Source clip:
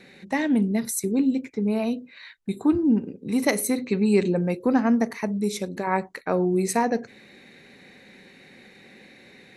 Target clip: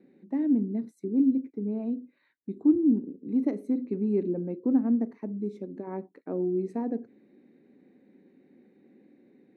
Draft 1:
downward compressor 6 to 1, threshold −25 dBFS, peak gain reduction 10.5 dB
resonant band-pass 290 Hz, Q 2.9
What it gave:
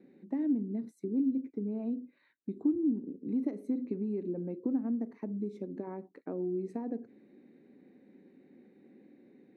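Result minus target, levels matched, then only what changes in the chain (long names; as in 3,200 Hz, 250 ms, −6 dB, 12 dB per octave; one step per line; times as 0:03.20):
downward compressor: peak gain reduction +10.5 dB
remove: downward compressor 6 to 1, threshold −25 dBFS, peak gain reduction 10.5 dB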